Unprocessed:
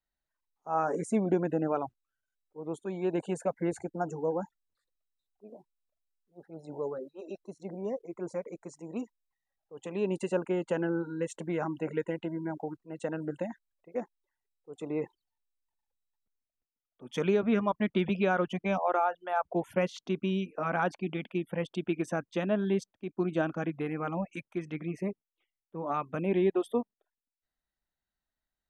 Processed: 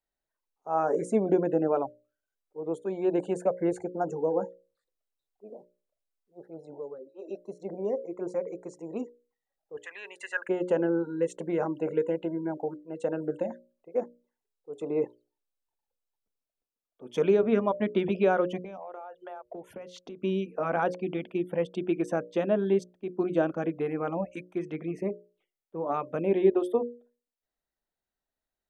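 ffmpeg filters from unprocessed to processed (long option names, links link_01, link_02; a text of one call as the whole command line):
ffmpeg -i in.wav -filter_complex "[0:a]asettb=1/sr,asplit=3[link_01][link_02][link_03];[link_01]atrim=end=9.774[link_04];[link_02]atrim=start=9.77:end=10.49,asetpts=PTS-STARTPTS,afade=type=in:duration=0.004:curve=qsin,afade=type=out:start_time=0.716:duration=0.004:curve=qsin,highpass=frequency=1700:width_type=q:width=12[link_05];[link_03]atrim=start=10.486[link_06];[link_04][link_05]acrossfade=duration=0.004:curve1=hsin:curve2=qsin[link_07];[link_07][link_06]acrossfade=duration=0.004:curve1=qsin:curve2=hsin,asettb=1/sr,asplit=3[link_08][link_09][link_10];[link_08]atrim=end=11.674[link_11];[link_09]atrim=start=11.67:end=17.2,asetpts=PTS-STARTPTS,afade=type=in:duration=0.004:curve=qsin,afade=type=out:start_time=5.526:duration=0.004:curve=qsin,bandreject=frequency=1900:width=10[link_12];[link_10]atrim=start=17.196[link_13];[link_11][link_12]acrossfade=duration=0.004:curve1=hsin:curve2=qsin[link_14];[link_14][link_13]acrossfade=duration=0.004:curve1=qsin:curve2=hsin,asettb=1/sr,asplit=3[link_15][link_16][link_17];[link_15]atrim=end=18.634[link_18];[link_16]atrim=start=18.63:end=20.21,asetpts=PTS-STARTPTS,afade=type=in:duration=0.004:curve=qsin,afade=type=out:start_time=1.576:duration=0.004:curve=qsin,acompressor=threshold=-40dB:ratio=20:attack=3.2:release=140:knee=1:detection=peak[link_19];[link_17]atrim=start=20.206[link_20];[link_18][link_19]acrossfade=duration=0.004:curve1=hsin:curve2=qsin[link_21];[link_21][link_20]acrossfade=duration=0.004:curve1=qsin:curve2=hsin,asplit=3[link_22][link_23][link_24];[link_22]atrim=end=6.83,asetpts=PTS-STARTPTS,afade=type=out:start_time=6.46:duration=0.37:silence=0.298538[link_25];[link_23]atrim=start=6.83:end=7.04,asetpts=PTS-STARTPTS,volume=-10.5dB[link_26];[link_24]atrim=start=7.04,asetpts=PTS-STARTPTS,afade=type=in:duration=0.37:silence=0.298538[link_27];[link_25][link_26][link_27]concat=n=3:v=0:a=1,equalizer=frequency=470:width_type=o:width=1.5:gain=9.5,bandreject=frequency=60:width_type=h:width=6,bandreject=frequency=120:width_type=h:width=6,bandreject=frequency=180:width_type=h:width=6,bandreject=frequency=240:width_type=h:width=6,bandreject=frequency=300:width_type=h:width=6,bandreject=frequency=360:width_type=h:width=6,bandreject=frequency=420:width_type=h:width=6,bandreject=frequency=480:width_type=h:width=6,bandreject=frequency=540:width_type=h:width=6,bandreject=frequency=600:width_type=h:width=6,volume=-2.5dB" out.wav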